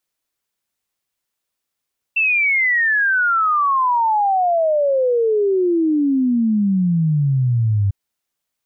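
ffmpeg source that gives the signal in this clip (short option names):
-f lavfi -i "aevalsrc='0.211*clip(min(t,5.75-t)/0.01,0,1)*sin(2*PI*2700*5.75/log(97/2700)*(exp(log(97/2700)*t/5.75)-1))':d=5.75:s=44100"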